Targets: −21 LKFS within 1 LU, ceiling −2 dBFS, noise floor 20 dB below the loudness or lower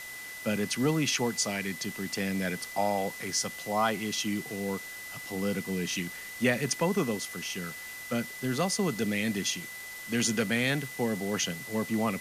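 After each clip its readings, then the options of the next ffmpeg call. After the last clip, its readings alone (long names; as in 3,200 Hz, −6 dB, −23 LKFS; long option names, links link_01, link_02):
interfering tone 2,000 Hz; level of the tone −41 dBFS; background noise floor −42 dBFS; target noise floor −51 dBFS; integrated loudness −30.5 LKFS; sample peak −13.0 dBFS; target loudness −21.0 LKFS
→ -af "bandreject=frequency=2000:width=30"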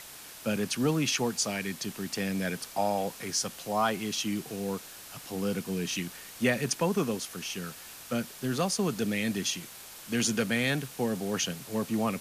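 interfering tone none found; background noise floor −47 dBFS; target noise floor −51 dBFS
→ -af "afftdn=noise_reduction=6:noise_floor=-47"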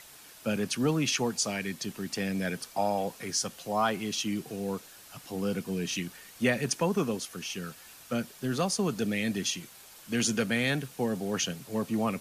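background noise floor −52 dBFS; integrated loudness −31.0 LKFS; sample peak −13.5 dBFS; target loudness −21.0 LKFS
→ -af "volume=10dB"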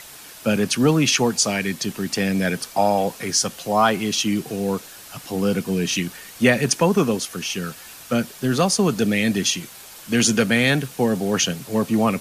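integrated loudness −21.0 LKFS; sample peak −3.5 dBFS; background noise floor −42 dBFS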